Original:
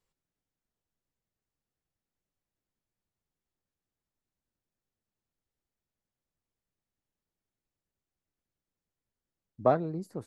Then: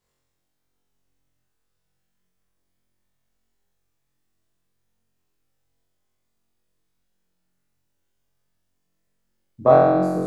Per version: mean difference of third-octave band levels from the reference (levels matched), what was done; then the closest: 8.0 dB: flutter echo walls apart 3.8 m, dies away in 1.4 s; gain +4.5 dB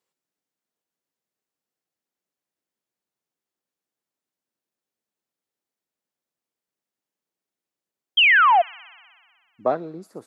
2.5 dB: HPF 260 Hz 12 dB/oct; painted sound fall, 8.17–8.62, 650–3300 Hz -17 dBFS; on a send: thin delay 62 ms, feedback 79%, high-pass 3700 Hz, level -11 dB; on the sum: gain +2.5 dB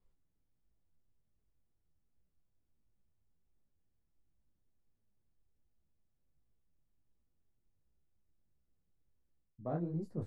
4.5 dB: tilt -3.5 dB/oct; reverse; compressor 16:1, threshold -31 dBFS, peak gain reduction 18 dB; reverse; detuned doubles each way 48 cents; gain +1 dB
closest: second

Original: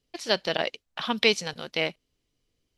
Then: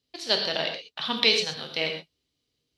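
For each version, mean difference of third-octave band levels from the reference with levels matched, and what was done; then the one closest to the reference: 4.5 dB: HPF 66 Hz; bell 4000 Hz +9 dB 0.66 oct; non-linear reverb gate 0.15 s flat, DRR 3 dB; gain -4 dB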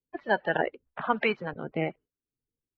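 9.0 dB: bin magnitudes rounded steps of 30 dB; LPF 1700 Hz 24 dB/oct; gate with hold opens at -59 dBFS; harmonic tremolo 1.2 Hz, depth 70%, crossover 540 Hz; gain +6.5 dB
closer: first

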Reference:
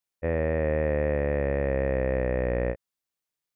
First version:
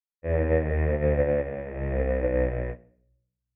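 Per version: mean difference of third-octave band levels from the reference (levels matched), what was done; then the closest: 3.0 dB: shoebox room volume 110 m³, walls mixed, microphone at 0.64 m; upward expander 2.5:1, over -32 dBFS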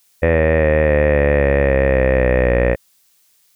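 1.5 dB: high shelf 2300 Hz +11.5 dB; maximiser +22.5 dB; gain -2.5 dB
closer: second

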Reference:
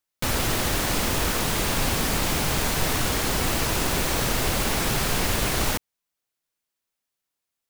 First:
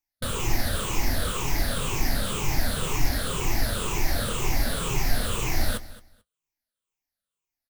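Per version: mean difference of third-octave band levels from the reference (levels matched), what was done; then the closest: 3.5 dB: moving spectral ripple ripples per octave 0.72, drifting -2 Hz, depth 14 dB; low shelf 70 Hz +11.5 dB; flange 0.63 Hz, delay 7 ms, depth 2.3 ms, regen -54%; feedback echo 0.22 s, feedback 18%, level -18 dB; gain -3.5 dB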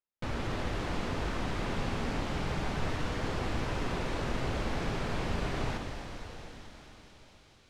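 7.0 dB: tape spacing loss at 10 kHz 25 dB; on a send: thin delay 0.222 s, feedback 83%, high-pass 3500 Hz, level -10.5 dB; on the sum: plate-style reverb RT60 4.6 s, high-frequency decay 1×, DRR 3 dB; gain -8 dB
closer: first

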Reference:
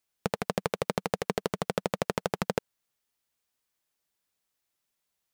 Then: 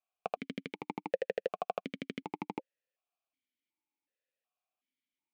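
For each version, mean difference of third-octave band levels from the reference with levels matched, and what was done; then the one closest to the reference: 10.5 dB: vowel sequencer 2.7 Hz; gain +5 dB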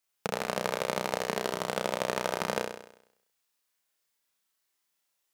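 5.0 dB: low shelf 350 Hz -9.5 dB; flutter echo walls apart 5.6 m, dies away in 0.73 s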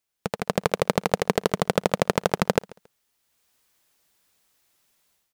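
1.0 dB: AGC gain up to 14 dB; on a send: feedback echo 0.138 s, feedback 24%, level -23 dB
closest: third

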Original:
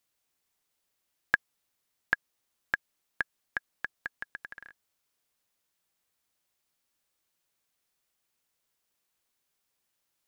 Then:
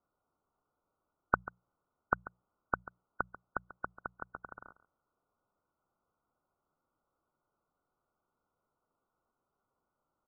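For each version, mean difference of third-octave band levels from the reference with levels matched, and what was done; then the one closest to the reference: 10.5 dB: brick-wall FIR low-pass 1500 Hz; notches 60/120/180 Hz; echo 0.14 s -16.5 dB; gain +6.5 dB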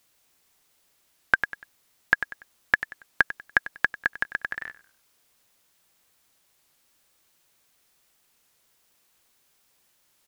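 3.0 dB: on a send: feedback echo 96 ms, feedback 30%, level -17 dB; on the sum: maximiser +14.5 dB; record warp 33 1/3 rpm, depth 100 cents; gain -1.5 dB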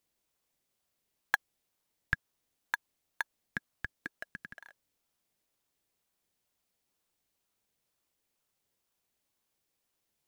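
5.0 dB: HPF 1300 Hz 12 dB/oct; in parallel at -8 dB: decimation with a swept rate 24×, swing 60% 2.1 Hz; on the sum: gain -2.5 dB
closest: second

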